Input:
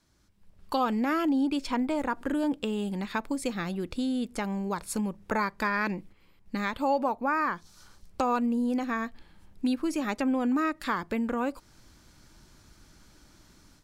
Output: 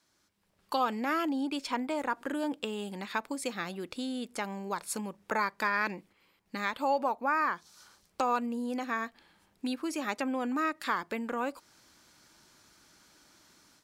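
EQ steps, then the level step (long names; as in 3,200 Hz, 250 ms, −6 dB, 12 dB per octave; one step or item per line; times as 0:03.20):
high-pass filter 510 Hz 6 dB per octave
0.0 dB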